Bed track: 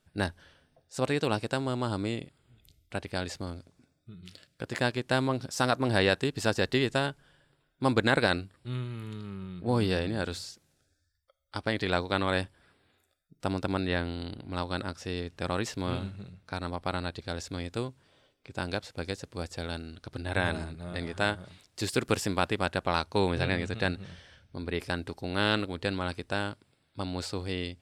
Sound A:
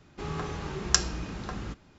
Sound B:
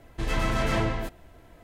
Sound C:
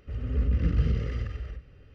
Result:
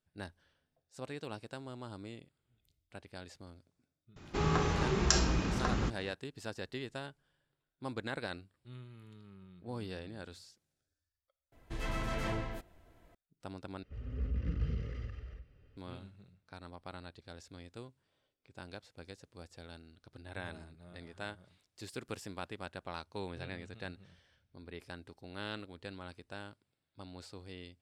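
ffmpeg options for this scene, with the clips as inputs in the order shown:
ffmpeg -i bed.wav -i cue0.wav -i cue1.wav -i cue2.wav -filter_complex "[0:a]volume=-15dB[link_01];[1:a]alimiter=level_in=13dB:limit=-1dB:release=50:level=0:latency=1[link_02];[link_01]asplit=3[link_03][link_04][link_05];[link_03]atrim=end=11.524[link_06];[2:a]atrim=end=1.63,asetpts=PTS-STARTPTS,volume=-10.5dB[link_07];[link_04]atrim=start=13.146:end=13.834[link_08];[3:a]atrim=end=1.94,asetpts=PTS-STARTPTS,volume=-10.5dB[link_09];[link_05]atrim=start=15.766[link_10];[link_02]atrim=end=1.98,asetpts=PTS-STARTPTS,volume=-9dB,afade=type=in:duration=0.004:curve=hsin,afade=type=out:start_time=1.976:duration=0.004:curve=hsin,adelay=4160[link_11];[link_06][link_07]acrossfade=duration=0.004:curve1=hsin:curve2=hsin[link_12];[link_12][link_08]acrossfade=duration=0.004:curve1=hsin:curve2=hsin[link_13];[link_13][link_09]acrossfade=duration=0.004:curve1=hsin:curve2=hsin[link_14];[link_14][link_10]acrossfade=duration=0.004:curve1=hsin:curve2=hsin[link_15];[link_15][link_11]amix=inputs=2:normalize=0" out.wav

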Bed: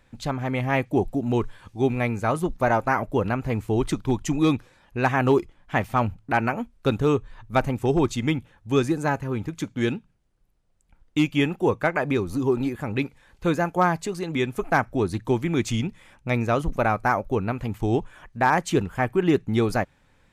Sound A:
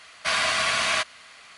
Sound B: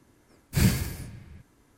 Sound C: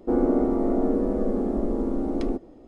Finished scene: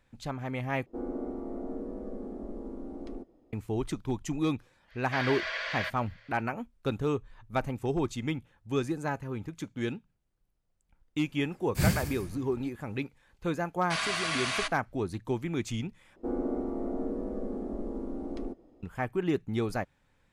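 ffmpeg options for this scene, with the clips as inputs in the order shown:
ffmpeg -i bed.wav -i cue0.wav -i cue1.wav -i cue2.wav -filter_complex "[3:a]asplit=2[link_01][link_02];[1:a]asplit=2[link_03][link_04];[0:a]volume=-8.5dB[link_05];[link_03]highpass=frequency=480:width=0.5412,highpass=frequency=480:width=1.3066,equalizer=frequency=530:width_type=q:width=4:gain=10,equalizer=frequency=750:width_type=q:width=4:gain=-10,equalizer=frequency=1200:width_type=q:width=4:gain=-10,equalizer=frequency=1700:width_type=q:width=4:gain=5,equalizer=frequency=2700:width_type=q:width=4:gain=-6,equalizer=frequency=3900:width_type=q:width=4:gain=-6,lowpass=frequency=4300:width=0.5412,lowpass=frequency=4300:width=1.3066[link_06];[link_04]agate=range=-26dB:threshold=-41dB:ratio=16:release=100:detection=peak[link_07];[link_05]asplit=3[link_08][link_09][link_10];[link_08]atrim=end=0.864[link_11];[link_01]atrim=end=2.67,asetpts=PTS-STARTPTS,volume=-14.5dB[link_12];[link_09]atrim=start=3.526:end=16.164[link_13];[link_02]atrim=end=2.67,asetpts=PTS-STARTPTS,volume=-10.5dB[link_14];[link_10]atrim=start=18.826[link_15];[link_06]atrim=end=1.57,asetpts=PTS-STARTPTS,volume=-8dB,afade=type=in:duration=0.05,afade=type=out:start_time=1.52:duration=0.05,adelay=4870[link_16];[2:a]atrim=end=1.77,asetpts=PTS-STARTPTS,volume=-4dB,afade=type=in:duration=0.004:curve=hsin,afade=type=out:start_time=1.766:duration=0.004:curve=hsin,adelay=494802S[link_17];[link_07]atrim=end=1.57,asetpts=PTS-STARTPTS,volume=-8dB,afade=type=in:duration=0.004:curve=hsin,afade=type=out:start_time=1.566:duration=0.004:curve=hsin,adelay=13650[link_18];[link_11][link_12]acrossfade=duration=0.004:curve1=hsin:curve2=hsin[link_19];[link_19][link_13]acrossfade=duration=0.004:curve1=hsin:curve2=hsin[link_20];[link_20][link_14]acrossfade=duration=0.004:curve1=hsin:curve2=hsin[link_21];[link_21][link_15]acrossfade=duration=0.004:curve1=hsin:curve2=hsin[link_22];[link_22][link_16][link_17][link_18]amix=inputs=4:normalize=0" out.wav

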